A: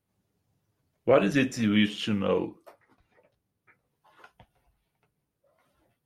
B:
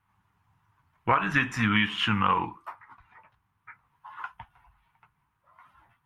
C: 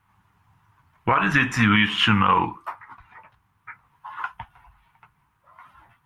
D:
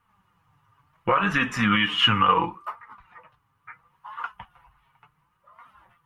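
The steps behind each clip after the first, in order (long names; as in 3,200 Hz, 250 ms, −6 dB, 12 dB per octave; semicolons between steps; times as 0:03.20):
drawn EQ curve 100 Hz 0 dB, 560 Hz −16 dB, 960 Hz +13 dB, 3,000 Hz 0 dB, 4,500 Hz −10 dB; downward compressor 12 to 1, threshold −26 dBFS, peak gain reduction 12 dB; level +7 dB
brickwall limiter −14.5 dBFS, peak gain reduction 7 dB; level +7.5 dB
flanger 0.71 Hz, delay 4.2 ms, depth 3.3 ms, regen +35%; hollow resonant body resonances 510/1,200/2,900 Hz, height 10 dB, ringing for 45 ms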